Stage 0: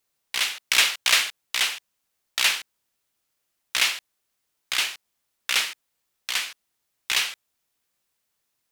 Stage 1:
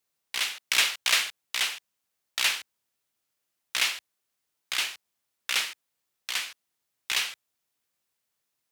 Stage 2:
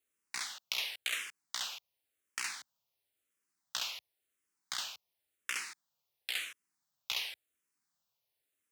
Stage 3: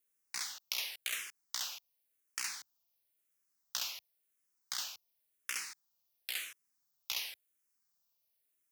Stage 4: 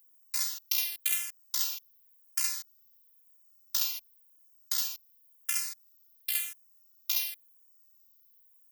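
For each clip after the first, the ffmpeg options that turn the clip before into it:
ffmpeg -i in.wav -af "highpass=63,volume=-4dB" out.wav
ffmpeg -i in.wav -filter_complex "[0:a]acompressor=threshold=-28dB:ratio=10,asplit=2[link_01][link_02];[link_02]afreqshift=-0.94[link_03];[link_01][link_03]amix=inputs=2:normalize=1,volume=-1.5dB" out.wav
ffmpeg -i in.wav -af "aexciter=amount=1.7:drive=6.2:freq=4900,volume=-3.5dB" out.wav
ffmpeg -i in.wav -af "aemphasis=mode=production:type=50fm,afftfilt=real='hypot(re,im)*cos(PI*b)':imag='0':win_size=512:overlap=0.75,volume=2.5dB" out.wav

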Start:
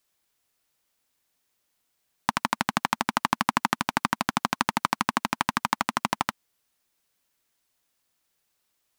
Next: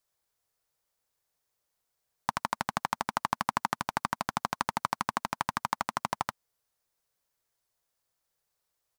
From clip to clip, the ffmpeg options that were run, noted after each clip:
ffmpeg -i in.wav -af "firequalizer=gain_entry='entry(120,0);entry(250,-10);entry(460,0);entry(2700,-8);entry(4700,-4)':delay=0.05:min_phase=1,volume=-2.5dB" out.wav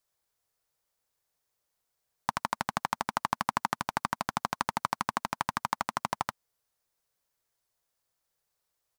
ffmpeg -i in.wav -af anull out.wav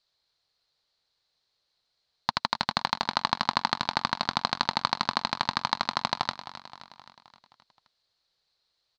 ffmpeg -i in.wav -af "lowpass=frequency=4200:width_type=q:width=6.7,aecho=1:1:262|524|786|1048|1310|1572:0.2|0.116|0.0671|0.0389|0.0226|0.0131,volume=2dB" out.wav

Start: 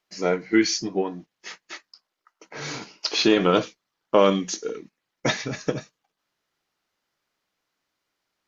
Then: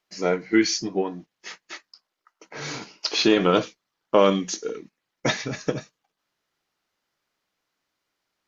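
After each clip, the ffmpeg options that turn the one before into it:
ffmpeg -i in.wav -af anull out.wav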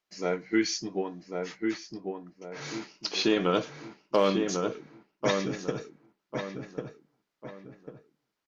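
ffmpeg -i in.wav -filter_complex "[0:a]asplit=2[link_01][link_02];[link_02]adelay=1096,lowpass=frequency=1700:poles=1,volume=-4dB,asplit=2[link_03][link_04];[link_04]adelay=1096,lowpass=frequency=1700:poles=1,volume=0.37,asplit=2[link_05][link_06];[link_06]adelay=1096,lowpass=frequency=1700:poles=1,volume=0.37,asplit=2[link_07][link_08];[link_08]adelay=1096,lowpass=frequency=1700:poles=1,volume=0.37,asplit=2[link_09][link_10];[link_10]adelay=1096,lowpass=frequency=1700:poles=1,volume=0.37[link_11];[link_03][link_05][link_07][link_09][link_11]amix=inputs=5:normalize=0[link_12];[link_01][link_12]amix=inputs=2:normalize=0,asoftclip=type=hard:threshold=-6.5dB,volume=-6.5dB" out.wav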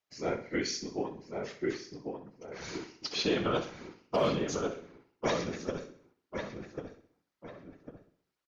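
ffmpeg -i in.wav -filter_complex "[0:a]afftfilt=real='hypot(re,im)*cos(2*PI*random(0))':imag='hypot(re,im)*sin(2*PI*random(1))':win_size=512:overlap=0.75,asplit=2[link_01][link_02];[link_02]aecho=0:1:64|128|192|256|320:0.251|0.113|0.0509|0.0229|0.0103[link_03];[link_01][link_03]amix=inputs=2:normalize=0,volume=2dB" out.wav

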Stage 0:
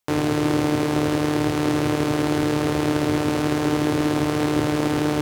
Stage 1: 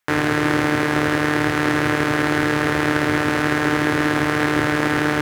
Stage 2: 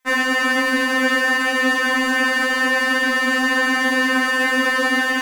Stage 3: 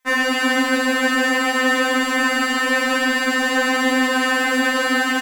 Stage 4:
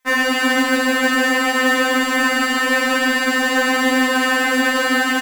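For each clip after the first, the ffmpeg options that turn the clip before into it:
ffmpeg -i in.wav -af "equalizer=frequency=1700:width=1.3:gain=13.5" out.wav
ffmpeg -i in.wav -af "afftfilt=real='re*3.46*eq(mod(b,12),0)':imag='im*3.46*eq(mod(b,12),0)':win_size=2048:overlap=0.75,volume=6dB" out.wav
ffmpeg -i in.wav -af "aecho=1:1:152|304|456|608|760|912|1064|1216:0.631|0.353|0.198|0.111|0.0621|0.0347|0.0195|0.0109" out.wav
ffmpeg -i in.wav -af "acrusher=bits=5:mode=log:mix=0:aa=0.000001,volume=1.5dB" out.wav

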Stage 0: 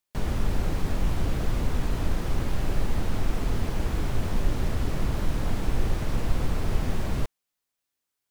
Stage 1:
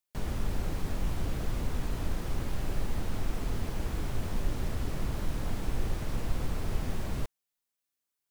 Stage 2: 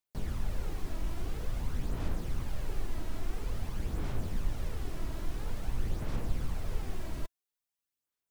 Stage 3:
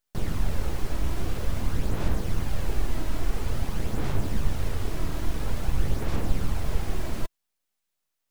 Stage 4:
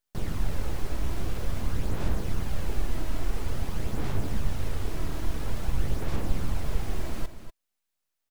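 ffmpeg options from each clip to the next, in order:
ffmpeg -i in.wav -af "highshelf=frequency=6800:gain=4.5,volume=-6dB" out.wav
ffmpeg -i in.wav -af "aphaser=in_gain=1:out_gain=1:delay=3.1:decay=0.4:speed=0.49:type=sinusoidal,volume=-5.5dB" out.wav
ffmpeg -i in.wav -af "aeval=exprs='abs(val(0))':channel_layout=same,volume=9dB" out.wav
ffmpeg -i in.wav -af "aecho=1:1:242:0.266,volume=-2.5dB" out.wav

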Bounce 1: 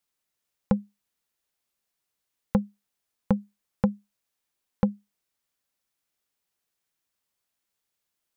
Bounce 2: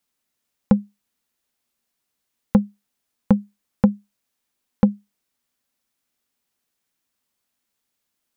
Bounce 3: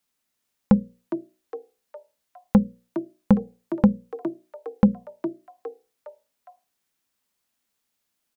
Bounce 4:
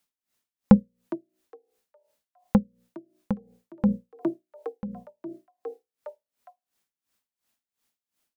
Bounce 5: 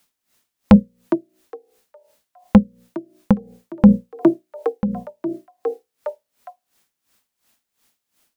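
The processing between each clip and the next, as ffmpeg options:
ffmpeg -i in.wav -af "equalizer=frequency=240:width_type=o:width=0.42:gain=8,volume=4dB" out.wav
ffmpeg -i in.wav -filter_complex "[0:a]bandreject=frequency=60:width_type=h:width=6,bandreject=frequency=120:width_type=h:width=6,bandreject=frequency=180:width_type=h:width=6,bandreject=frequency=240:width_type=h:width=6,bandreject=frequency=300:width_type=h:width=6,bandreject=frequency=360:width_type=h:width=6,bandreject=frequency=420:width_type=h:width=6,bandreject=frequency=480:width_type=h:width=6,bandreject=frequency=540:width_type=h:width=6,asplit=5[link_01][link_02][link_03][link_04][link_05];[link_02]adelay=410,afreqshift=130,volume=-12dB[link_06];[link_03]adelay=820,afreqshift=260,volume=-19.1dB[link_07];[link_04]adelay=1230,afreqshift=390,volume=-26.3dB[link_08];[link_05]adelay=1640,afreqshift=520,volume=-33.4dB[link_09];[link_01][link_06][link_07][link_08][link_09]amix=inputs=5:normalize=0" out.wav
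ffmpeg -i in.wav -af "aeval=exprs='val(0)*pow(10,-22*(0.5-0.5*cos(2*PI*2.8*n/s))/20)':channel_layout=same,volume=2.5dB" out.wav
ffmpeg -i in.wav -af "apsyclip=14.5dB,volume=-1.5dB" out.wav

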